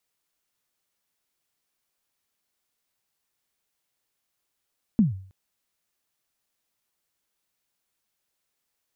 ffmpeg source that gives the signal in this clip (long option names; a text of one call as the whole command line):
ffmpeg -f lavfi -i "aevalsrc='0.251*pow(10,-3*t/0.49)*sin(2*PI*(240*0.145/log(95/240)*(exp(log(95/240)*min(t,0.145)/0.145)-1)+95*max(t-0.145,0)))':duration=0.32:sample_rate=44100" out.wav